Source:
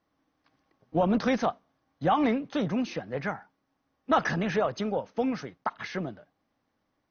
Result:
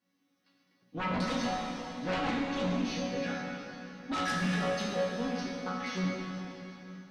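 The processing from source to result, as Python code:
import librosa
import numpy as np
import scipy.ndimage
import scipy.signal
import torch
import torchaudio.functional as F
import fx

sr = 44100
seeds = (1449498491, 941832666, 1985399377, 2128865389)

y = scipy.signal.sosfilt(scipy.signal.butter(2, 130.0, 'highpass', fs=sr, output='sos'), x)
y = fx.peak_eq(y, sr, hz=760.0, db=-13.0, octaves=2.4)
y = fx.resonator_bank(y, sr, root=54, chord='sus4', decay_s=0.38)
y = fx.room_early_taps(y, sr, ms=(18, 34), db=(-9.5, -9.5))
y = fx.fold_sine(y, sr, drive_db=16, ceiling_db=-30.5)
y = fx.rev_plate(y, sr, seeds[0], rt60_s=3.5, hf_ratio=0.9, predelay_ms=0, drr_db=-1.0)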